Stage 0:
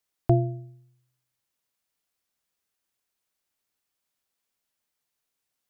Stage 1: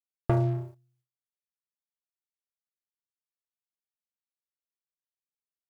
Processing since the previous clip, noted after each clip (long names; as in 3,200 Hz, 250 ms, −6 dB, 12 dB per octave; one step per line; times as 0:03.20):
noise gate with hold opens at −59 dBFS
leveller curve on the samples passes 3
downward compressor, threshold −17 dBFS, peak gain reduction 5.5 dB
level −4.5 dB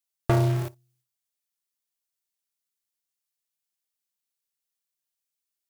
high-shelf EQ 2,800 Hz +11.5 dB
in parallel at −5 dB: log-companded quantiser 2 bits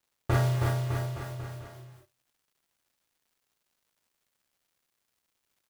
bouncing-ball delay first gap 320 ms, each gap 0.9×, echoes 5
reverb whose tail is shaped and stops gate 80 ms flat, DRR −7.5 dB
surface crackle 370 per second −54 dBFS
level −9 dB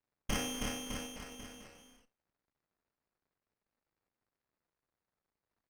voice inversion scrambler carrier 3,300 Hz
windowed peak hold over 9 samples
level −6.5 dB